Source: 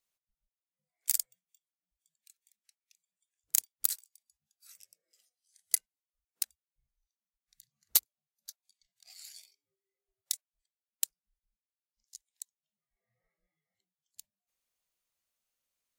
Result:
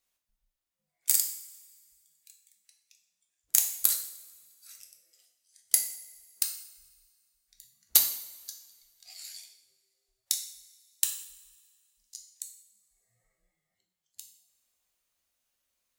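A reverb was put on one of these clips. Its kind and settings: two-slope reverb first 0.62 s, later 2 s, from -17 dB, DRR 2.5 dB; trim +4 dB

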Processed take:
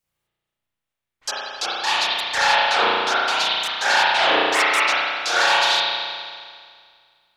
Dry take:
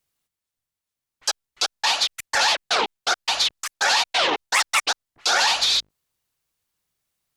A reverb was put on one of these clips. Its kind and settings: spring tank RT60 2 s, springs 34 ms, chirp 65 ms, DRR -9 dB; trim -4.5 dB

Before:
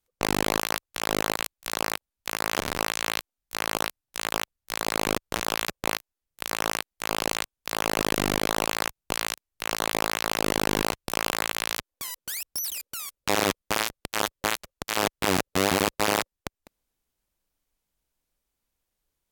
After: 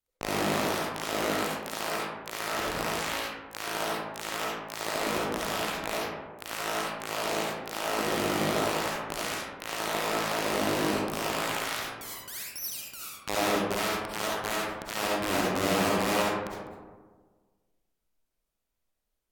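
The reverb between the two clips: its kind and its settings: algorithmic reverb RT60 1.5 s, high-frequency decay 0.35×, pre-delay 25 ms, DRR -6 dB; trim -9 dB

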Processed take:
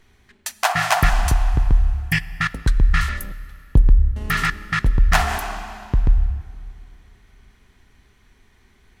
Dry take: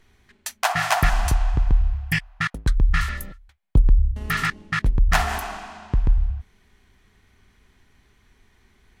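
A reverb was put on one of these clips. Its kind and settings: plate-style reverb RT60 3.3 s, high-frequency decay 0.8×, DRR 16.5 dB; trim +2.5 dB

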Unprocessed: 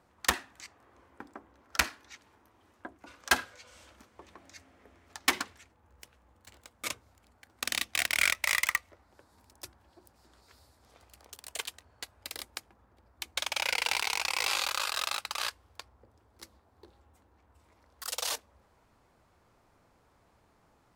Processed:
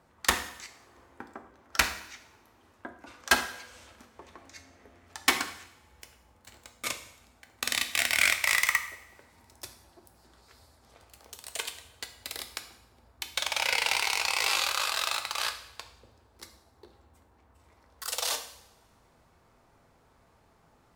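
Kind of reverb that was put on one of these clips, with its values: two-slope reverb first 0.72 s, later 2.1 s, from -23 dB, DRR 6 dB; trim +2 dB

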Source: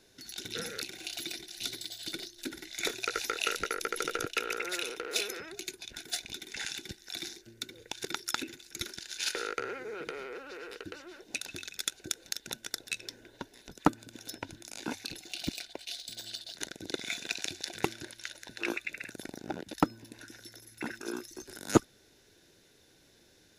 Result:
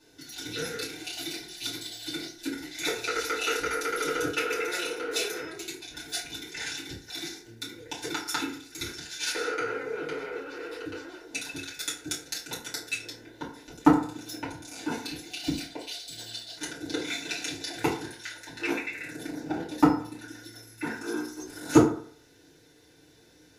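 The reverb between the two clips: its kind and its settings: FDN reverb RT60 0.53 s, low-frequency decay 0.9×, high-frequency decay 0.55×, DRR -9.5 dB; trim -5.5 dB

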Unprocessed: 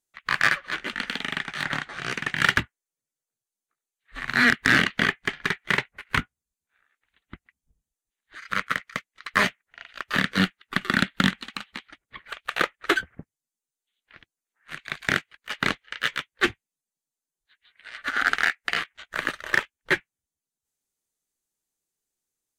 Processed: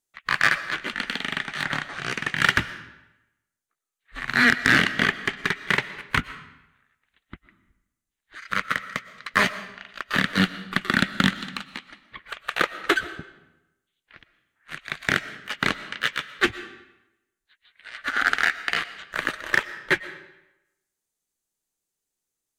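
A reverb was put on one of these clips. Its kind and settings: algorithmic reverb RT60 0.92 s, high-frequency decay 0.85×, pre-delay 80 ms, DRR 14 dB; trim +1 dB

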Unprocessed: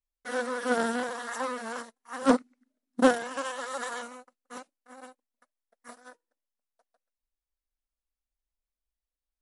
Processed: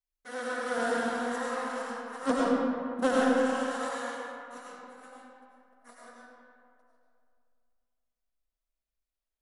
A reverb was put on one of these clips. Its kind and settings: algorithmic reverb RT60 2.3 s, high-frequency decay 0.55×, pre-delay 55 ms, DRR -6 dB; trim -7 dB

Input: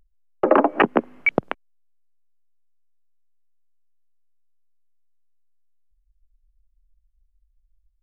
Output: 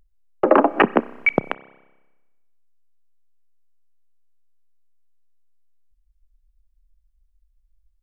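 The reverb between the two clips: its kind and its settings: spring tank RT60 1.1 s, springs 30 ms, chirp 55 ms, DRR 18.5 dB; trim +1.5 dB

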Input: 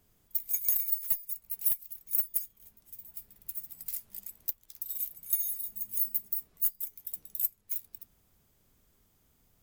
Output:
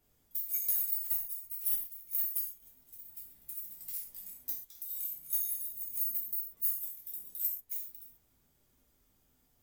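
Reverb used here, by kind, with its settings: gated-style reverb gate 160 ms falling, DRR -4 dB; trim -8 dB

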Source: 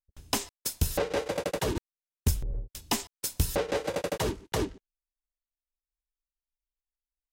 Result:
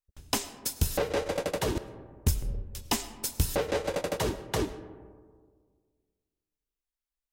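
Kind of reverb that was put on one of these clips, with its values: algorithmic reverb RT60 1.8 s, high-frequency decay 0.3×, pre-delay 65 ms, DRR 13.5 dB

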